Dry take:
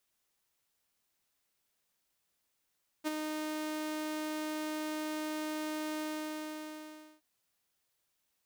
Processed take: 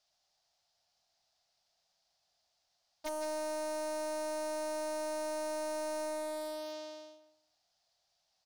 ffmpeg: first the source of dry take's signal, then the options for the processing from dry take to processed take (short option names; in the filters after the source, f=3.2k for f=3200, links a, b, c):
-f lavfi -i "aevalsrc='0.0447*(2*mod(308*t,1)-1)':d=4.17:s=44100,afade=t=in:d=0.032,afade=t=out:st=0.032:d=0.022:silence=0.531,afade=t=out:st=2.97:d=1.2"
-filter_complex "[0:a]firequalizer=gain_entry='entry(140,0);entry(260,-9);entry(450,-6);entry(690,14);entry(990,0);entry(2300,-2);entry(4800,11);entry(8400,-8);entry(15000,-18)':delay=0.05:min_phase=1,asplit=2[a][b];[b]adelay=162,lowpass=f=2k:p=1,volume=-10dB,asplit=2[c][d];[d]adelay=162,lowpass=f=2k:p=1,volume=0.23,asplit=2[e][f];[f]adelay=162,lowpass=f=2k:p=1,volume=0.23[g];[c][e][g]amix=inputs=3:normalize=0[h];[a][h]amix=inputs=2:normalize=0,aeval=exprs='0.0237*(abs(mod(val(0)/0.0237+3,4)-2)-1)':c=same"